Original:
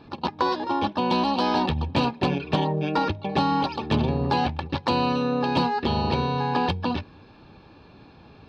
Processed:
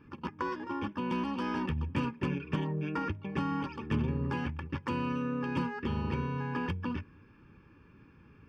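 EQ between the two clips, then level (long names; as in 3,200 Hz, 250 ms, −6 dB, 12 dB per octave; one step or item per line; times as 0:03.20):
phaser with its sweep stopped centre 1,700 Hz, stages 4
−6.0 dB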